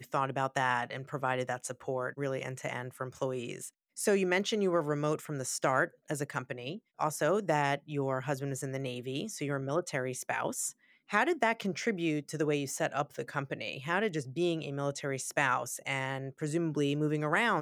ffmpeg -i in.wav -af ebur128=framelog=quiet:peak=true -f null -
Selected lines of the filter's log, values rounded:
Integrated loudness:
  I:         -32.9 LUFS
  Threshold: -43.0 LUFS
Loudness range:
  LRA:         2.8 LU
  Threshold: -53.1 LUFS
  LRA low:   -34.7 LUFS
  LRA high:  -31.9 LUFS
True peak:
  Peak:      -12.2 dBFS